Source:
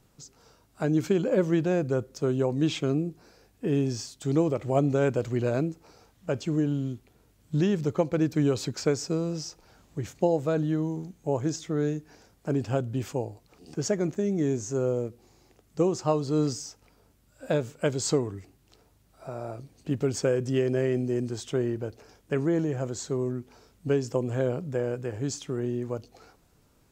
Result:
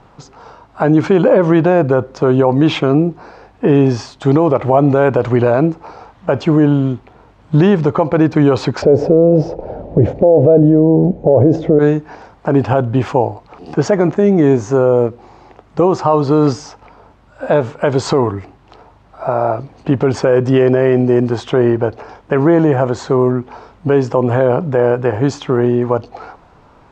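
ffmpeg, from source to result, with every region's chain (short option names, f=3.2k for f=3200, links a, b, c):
-filter_complex "[0:a]asettb=1/sr,asplit=3[a][b][c];[a]atrim=end=8.824[d];[b]atrim=start=8.82:end=11.79,asetpts=PTS-STARTPTS,afade=t=in:d=0.004:c=qsin,afade=t=out:st=2.966:d=0.004:c=qsin,lowpass=f=1.5k:p=1,lowshelf=f=790:t=q:w=3:g=12[e];[c]atrim=start=11.786[f];[d][e]acrossfade=d=0.004:c1=hsin:c2=qsin[g];[g][f]acrossfade=d=0.004:c1=qsin:c2=hsin,lowpass=3.3k,equalizer=f=920:t=o:w=1.4:g=12.5,alimiter=level_in=15.5dB:limit=-1dB:release=50:level=0:latency=1,volume=-1dB"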